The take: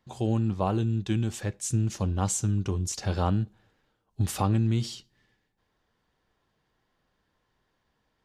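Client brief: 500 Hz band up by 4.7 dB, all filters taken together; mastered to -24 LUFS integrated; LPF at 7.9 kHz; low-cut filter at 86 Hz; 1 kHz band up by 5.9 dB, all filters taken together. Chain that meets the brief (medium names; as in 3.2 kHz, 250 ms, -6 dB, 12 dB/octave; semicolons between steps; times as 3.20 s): high-pass 86 Hz; low-pass 7.9 kHz; peaking EQ 500 Hz +4.5 dB; peaking EQ 1 kHz +6 dB; trim +3.5 dB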